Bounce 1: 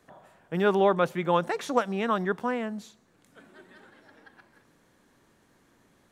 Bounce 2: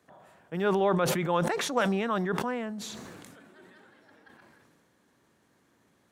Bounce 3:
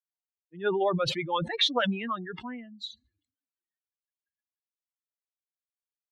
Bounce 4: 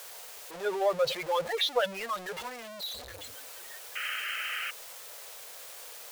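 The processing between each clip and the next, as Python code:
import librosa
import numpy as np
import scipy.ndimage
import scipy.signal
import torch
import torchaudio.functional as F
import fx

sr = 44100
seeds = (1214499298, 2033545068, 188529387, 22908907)

y1 = scipy.signal.sosfilt(scipy.signal.butter(2, 71.0, 'highpass', fs=sr, output='sos'), x)
y1 = fx.sustainer(y1, sr, db_per_s=25.0)
y1 = y1 * librosa.db_to_amplitude(-4.0)
y2 = fx.bin_expand(y1, sr, power=3.0)
y2 = fx.lowpass_res(y2, sr, hz=3800.0, q=5.4)
y2 = y2 * librosa.db_to_amplitude(3.0)
y3 = y2 + 0.5 * 10.0 ** (-28.0 / 20.0) * np.sign(y2)
y3 = fx.low_shelf_res(y3, sr, hz=370.0, db=-10.0, q=3.0)
y3 = fx.spec_paint(y3, sr, seeds[0], shape='noise', start_s=3.95, length_s=0.76, low_hz=1200.0, high_hz=3200.0, level_db=-29.0)
y3 = y3 * librosa.db_to_amplitude(-6.0)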